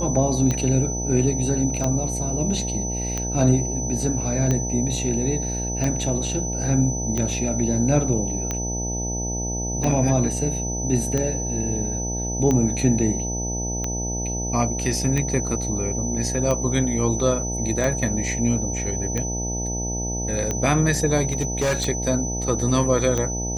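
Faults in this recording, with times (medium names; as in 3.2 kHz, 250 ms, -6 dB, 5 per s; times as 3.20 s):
buzz 60 Hz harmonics 15 -28 dBFS
tick 45 rpm -11 dBFS
whine 6 kHz -28 dBFS
21.31–21.87 s: clipped -17.5 dBFS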